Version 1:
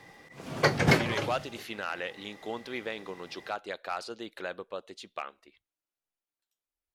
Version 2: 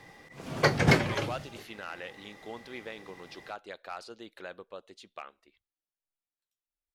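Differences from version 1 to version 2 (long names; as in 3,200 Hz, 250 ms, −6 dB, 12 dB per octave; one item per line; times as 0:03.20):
speech −6.0 dB
master: add low-shelf EQ 61 Hz +8 dB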